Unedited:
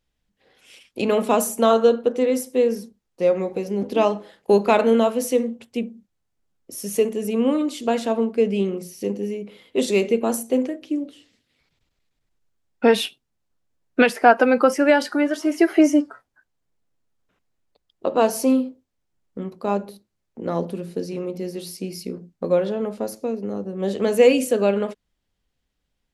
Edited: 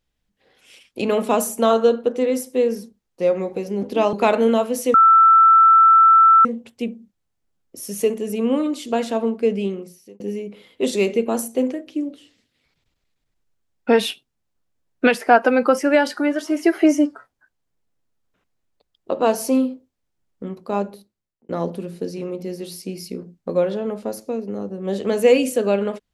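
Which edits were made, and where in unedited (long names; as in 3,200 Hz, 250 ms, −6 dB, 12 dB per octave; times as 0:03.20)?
0:04.13–0:04.59: remove
0:05.40: insert tone 1,330 Hz −8 dBFS 1.51 s
0:08.47–0:09.15: fade out
0:19.78–0:20.44: fade out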